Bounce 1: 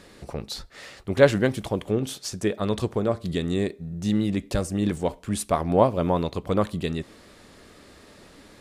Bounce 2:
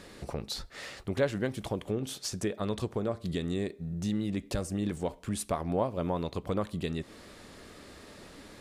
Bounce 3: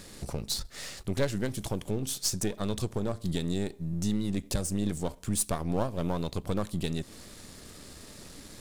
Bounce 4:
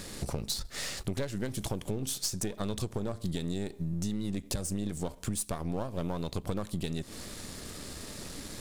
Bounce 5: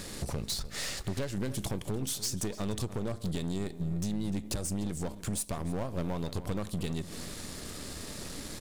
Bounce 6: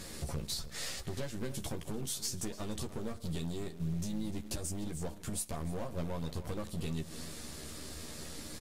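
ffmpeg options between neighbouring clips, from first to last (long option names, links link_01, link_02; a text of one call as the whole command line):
ffmpeg -i in.wav -af "acompressor=threshold=-34dB:ratio=2" out.wav
ffmpeg -i in.wav -af "aeval=exprs='if(lt(val(0),0),0.447*val(0),val(0))':channel_layout=same,bass=frequency=250:gain=7,treble=frequency=4000:gain=12" out.wav
ffmpeg -i in.wav -af "acompressor=threshold=-35dB:ratio=6,volume=5dB" out.wav
ffmpeg -i in.wav -filter_complex "[0:a]volume=28.5dB,asoftclip=hard,volume=-28.5dB,asplit=2[link_01][link_02];[link_02]adelay=297.4,volume=-14dB,highshelf=frequency=4000:gain=-6.69[link_03];[link_01][link_03]amix=inputs=2:normalize=0,volume=1dB" out.wav
ffmpeg -i in.wav -filter_complex "[0:a]asplit=2[link_01][link_02];[link_02]adelay=13,volume=-3.5dB[link_03];[link_01][link_03]amix=inputs=2:normalize=0,acrusher=bits=9:dc=4:mix=0:aa=0.000001,volume=-5.5dB" -ar 48000 -c:a libvorbis -b:a 48k out.ogg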